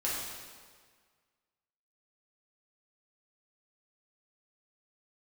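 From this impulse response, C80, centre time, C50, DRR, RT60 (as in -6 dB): 1.5 dB, 93 ms, -0.5 dB, -7.0 dB, 1.7 s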